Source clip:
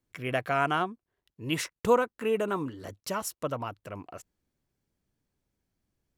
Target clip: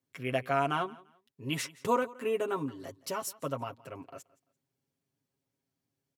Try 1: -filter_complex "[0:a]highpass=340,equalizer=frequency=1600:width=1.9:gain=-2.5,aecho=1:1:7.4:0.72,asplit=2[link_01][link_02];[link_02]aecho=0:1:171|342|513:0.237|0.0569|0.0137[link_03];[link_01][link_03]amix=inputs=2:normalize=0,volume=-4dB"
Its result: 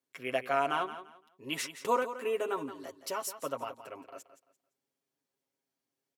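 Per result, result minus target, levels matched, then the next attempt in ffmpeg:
125 Hz band −12.5 dB; echo-to-direct +9.5 dB
-filter_complex "[0:a]highpass=120,equalizer=frequency=1600:width=1.9:gain=-2.5,aecho=1:1:7.4:0.72,asplit=2[link_01][link_02];[link_02]aecho=0:1:171|342|513:0.237|0.0569|0.0137[link_03];[link_01][link_03]amix=inputs=2:normalize=0,volume=-4dB"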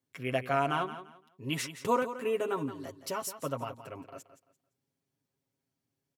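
echo-to-direct +9.5 dB
-filter_complex "[0:a]highpass=120,equalizer=frequency=1600:width=1.9:gain=-2.5,aecho=1:1:7.4:0.72,asplit=2[link_01][link_02];[link_02]aecho=0:1:171|342:0.0794|0.0191[link_03];[link_01][link_03]amix=inputs=2:normalize=0,volume=-4dB"

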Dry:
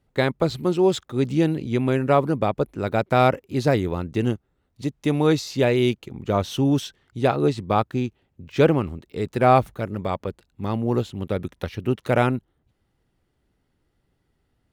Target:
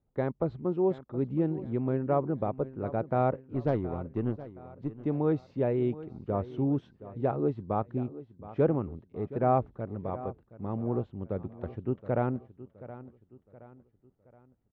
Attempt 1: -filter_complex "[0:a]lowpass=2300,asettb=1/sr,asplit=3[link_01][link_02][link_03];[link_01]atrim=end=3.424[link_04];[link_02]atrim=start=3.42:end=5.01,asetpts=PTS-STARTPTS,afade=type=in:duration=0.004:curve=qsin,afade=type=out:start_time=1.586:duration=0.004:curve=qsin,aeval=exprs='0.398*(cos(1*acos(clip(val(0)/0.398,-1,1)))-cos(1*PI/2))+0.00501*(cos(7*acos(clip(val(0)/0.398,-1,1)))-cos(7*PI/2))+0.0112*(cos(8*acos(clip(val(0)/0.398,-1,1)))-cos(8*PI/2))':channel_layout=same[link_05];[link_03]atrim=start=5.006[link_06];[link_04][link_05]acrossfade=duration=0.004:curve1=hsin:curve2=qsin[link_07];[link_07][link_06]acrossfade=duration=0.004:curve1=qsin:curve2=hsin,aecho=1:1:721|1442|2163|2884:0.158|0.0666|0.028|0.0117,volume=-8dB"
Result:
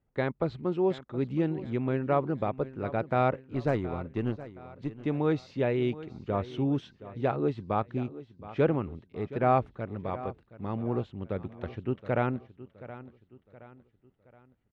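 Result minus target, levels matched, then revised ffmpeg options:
2,000 Hz band +8.0 dB
-filter_complex "[0:a]lowpass=1000,asettb=1/sr,asplit=3[link_01][link_02][link_03];[link_01]atrim=end=3.424[link_04];[link_02]atrim=start=3.42:end=5.01,asetpts=PTS-STARTPTS,afade=type=in:duration=0.004:curve=qsin,afade=type=out:start_time=1.586:duration=0.004:curve=qsin,aeval=exprs='0.398*(cos(1*acos(clip(val(0)/0.398,-1,1)))-cos(1*PI/2))+0.00501*(cos(7*acos(clip(val(0)/0.398,-1,1)))-cos(7*PI/2))+0.0112*(cos(8*acos(clip(val(0)/0.398,-1,1)))-cos(8*PI/2))':channel_layout=same[link_05];[link_03]atrim=start=5.006[link_06];[link_04][link_05]acrossfade=duration=0.004:curve1=hsin:curve2=qsin[link_07];[link_07][link_06]acrossfade=duration=0.004:curve1=qsin:curve2=hsin,aecho=1:1:721|1442|2163|2884:0.158|0.0666|0.028|0.0117,volume=-8dB"

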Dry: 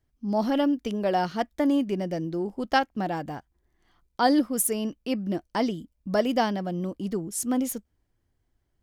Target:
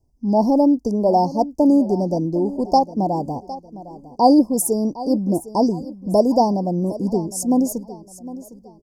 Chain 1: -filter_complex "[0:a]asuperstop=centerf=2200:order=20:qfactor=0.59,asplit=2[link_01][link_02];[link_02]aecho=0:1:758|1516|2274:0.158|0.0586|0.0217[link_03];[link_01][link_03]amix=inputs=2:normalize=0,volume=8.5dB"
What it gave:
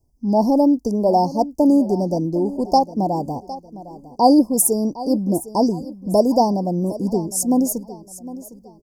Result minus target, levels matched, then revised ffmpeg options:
8,000 Hz band +4.5 dB
-filter_complex "[0:a]asuperstop=centerf=2200:order=20:qfactor=0.59,highshelf=frequency=8400:gain=-9,asplit=2[link_01][link_02];[link_02]aecho=0:1:758|1516|2274:0.158|0.0586|0.0217[link_03];[link_01][link_03]amix=inputs=2:normalize=0,volume=8.5dB"

